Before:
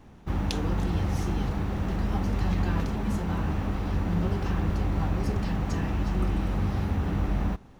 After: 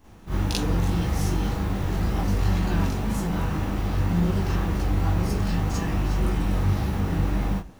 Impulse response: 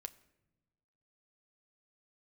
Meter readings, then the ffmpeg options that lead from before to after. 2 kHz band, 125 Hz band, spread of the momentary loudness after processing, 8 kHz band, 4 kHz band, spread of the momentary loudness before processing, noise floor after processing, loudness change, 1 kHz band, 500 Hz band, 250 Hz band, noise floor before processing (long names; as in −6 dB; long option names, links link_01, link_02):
+3.5 dB, +3.5 dB, 3 LU, can't be measured, +5.5 dB, 2 LU, −39 dBFS, +3.0 dB, +3.0 dB, +3.0 dB, +2.5 dB, −50 dBFS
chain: -filter_complex "[0:a]highshelf=frequency=6200:gain=11.5,flanger=delay=16:depth=6.6:speed=1.9,asplit=2[link_01][link_02];[1:a]atrim=start_sample=2205,atrim=end_sample=6174,adelay=41[link_03];[link_02][link_03]afir=irnorm=-1:irlink=0,volume=10.5dB[link_04];[link_01][link_04]amix=inputs=2:normalize=0,volume=-1.5dB"